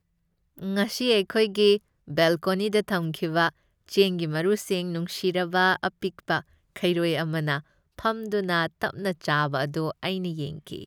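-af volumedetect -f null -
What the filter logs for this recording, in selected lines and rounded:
mean_volume: -26.0 dB
max_volume: -7.7 dB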